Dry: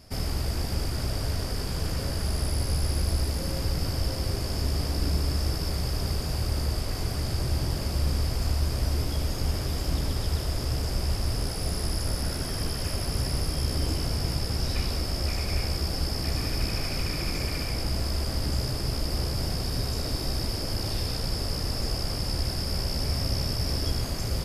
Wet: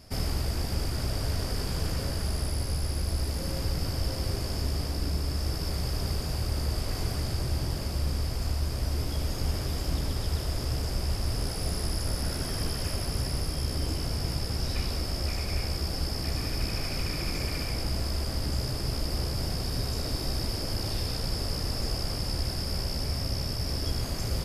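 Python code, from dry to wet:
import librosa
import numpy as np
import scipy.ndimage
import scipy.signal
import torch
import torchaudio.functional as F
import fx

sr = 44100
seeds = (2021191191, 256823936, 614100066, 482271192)

y = fx.rider(x, sr, range_db=10, speed_s=0.5)
y = y * librosa.db_to_amplitude(-2.0)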